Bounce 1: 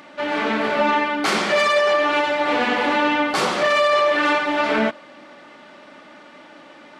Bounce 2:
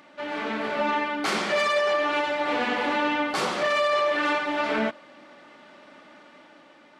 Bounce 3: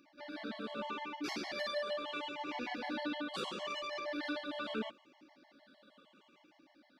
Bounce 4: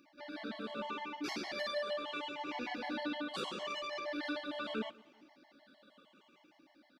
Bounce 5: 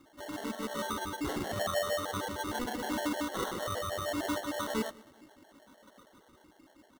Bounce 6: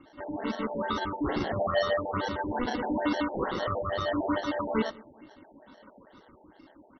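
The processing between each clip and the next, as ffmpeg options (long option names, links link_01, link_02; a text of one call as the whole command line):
ffmpeg -i in.wav -af "dynaudnorm=framelen=220:gausssize=7:maxgain=3dB,volume=-8.5dB" out.wav
ffmpeg -i in.wav -af "afftfilt=real='re*pow(10,8/40*sin(2*PI*(0.73*log(max(b,1)*sr/1024/100)/log(2)-(-0.76)*(pts-256)/sr)))':imag='im*pow(10,8/40*sin(2*PI*(0.73*log(max(b,1)*sr/1024/100)/log(2)-(-0.76)*(pts-256)/sr)))':win_size=1024:overlap=0.75,equalizer=frequency=125:width_type=o:width=1:gain=-6,equalizer=frequency=250:width_type=o:width=1:gain=3,equalizer=frequency=500:width_type=o:width=1:gain=-3,equalizer=frequency=1000:width_type=o:width=1:gain=-5,equalizer=frequency=2000:width_type=o:width=1:gain=-6,equalizer=frequency=4000:width_type=o:width=1:gain=5,equalizer=frequency=8000:width_type=o:width=1:gain=-8,afftfilt=real='re*gt(sin(2*PI*6.5*pts/sr)*(1-2*mod(floor(b*sr/1024/560),2)),0)':imag='im*gt(sin(2*PI*6.5*pts/sr)*(1-2*mod(floor(b*sr/1024/560),2)),0)':win_size=1024:overlap=0.75,volume=-8.5dB" out.wav
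ffmpeg -i in.wav -filter_complex "[0:a]asplit=2[link_01][link_02];[link_02]adelay=195,lowpass=frequency=4500:poles=1,volume=-24dB,asplit=2[link_03][link_04];[link_04]adelay=195,lowpass=frequency=4500:poles=1,volume=0.37[link_05];[link_01][link_03][link_05]amix=inputs=3:normalize=0" out.wav
ffmpeg -i in.wav -af "acrusher=samples=18:mix=1:aa=0.000001,volume=5.5dB" out.wav
ffmpeg -i in.wav -af "afftfilt=real='re*lt(b*sr/1024,910*pow(6100/910,0.5+0.5*sin(2*PI*2.3*pts/sr)))':imag='im*lt(b*sr/1024,910*pow(6100/910,0.5+0.5*sin(2*PI*2.3*pts/sr)))':win_size=1024:overlap=0.75,volume=5.5dB" out.wav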